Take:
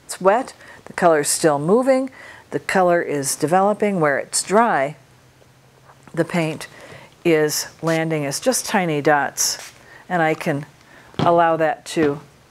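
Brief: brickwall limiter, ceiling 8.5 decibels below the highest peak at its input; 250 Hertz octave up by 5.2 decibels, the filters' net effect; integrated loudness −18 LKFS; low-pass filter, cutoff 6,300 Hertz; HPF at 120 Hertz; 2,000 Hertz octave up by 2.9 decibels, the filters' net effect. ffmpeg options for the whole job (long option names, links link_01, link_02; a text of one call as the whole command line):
ffmpeg -i in.wav -af "highpass=120,lowpass=6300,equalizer=frequency=250:width_type=o:gain=7.5,equalizer=frequency=2000:width_type=o:gain=3.5,volume=1.5dB,alimiter=limit=-5.5dB:level=0:latency=1" out.wav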